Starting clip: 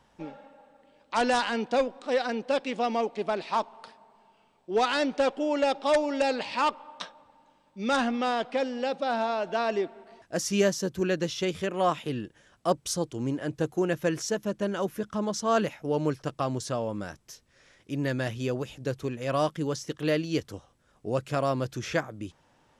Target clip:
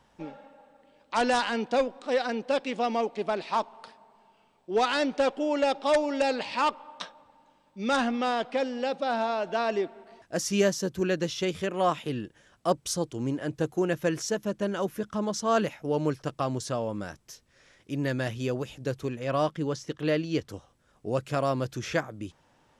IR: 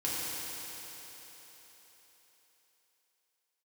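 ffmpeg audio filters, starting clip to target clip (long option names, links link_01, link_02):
-filter_complex "[0:a]asettb=1/sr,asplit=3[link_01][link_02][link_03];[link_01]atrim=end=19.194[link_04];[link_02]atrim=start=19.19:end=20.49,asetpts=PTS-STARTPTS,afade=type=in:duration=0.004:curve=qsin,afade=type=out:start_time=1.296:duration=0.004:curve=qsin,highshelf=frequency=7800:gain=-12[link_05];[link_03]atrim=start=20.486[link_06];[link_04][link_05]acrossfade=duration=0.004:curve1=hsin:curve2=qsin[link_07];[link_07][link_06]acrossfade=duration=0.004:curve1=qsin:curve2=hsin"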